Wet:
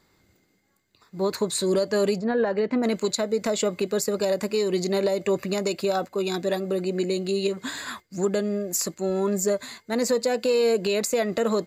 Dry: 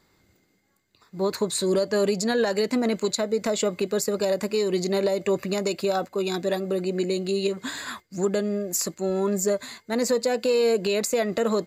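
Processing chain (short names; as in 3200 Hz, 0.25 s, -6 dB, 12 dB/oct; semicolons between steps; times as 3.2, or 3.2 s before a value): 2.18–2.82 LPF 1400 Hz -> 2400 Hz 12 dB/oct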